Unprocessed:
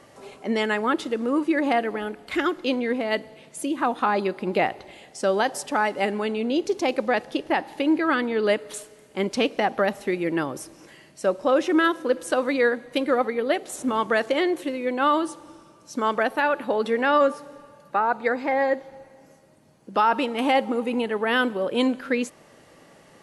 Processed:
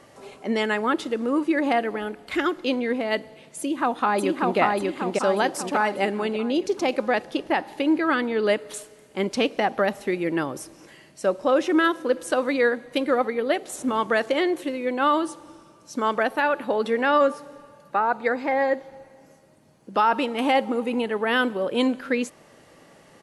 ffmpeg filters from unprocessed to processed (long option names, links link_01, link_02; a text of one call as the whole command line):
ffmpeg -i in.wav -filter_complex "[0:a]asplit=2[link_01][link_02];[link_02]afade=type=in:start_time=3.59:duration=0.01,afade=type=out:start_time=4.59:duration=0.01,aecho=0:1:590|1180|1770|2360|2950|3540|4130:0.841395|0.420698|0.210349|0.105174|0.0525872|0.0262936|0.0131468[link_03];[link_01][link_03]amix=inputs=2:normalize=0" out.wav